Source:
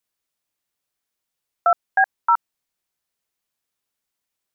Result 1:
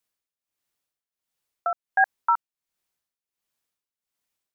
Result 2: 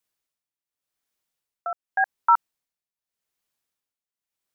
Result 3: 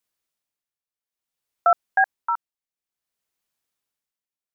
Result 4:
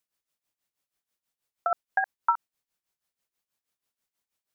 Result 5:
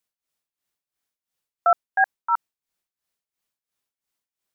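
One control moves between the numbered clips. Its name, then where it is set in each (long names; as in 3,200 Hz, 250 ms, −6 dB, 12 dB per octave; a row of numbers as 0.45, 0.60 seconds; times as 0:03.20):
amplitude tremolo, speed: 1.4, 0.86, 0.57, 6.2, 2.9 Hertz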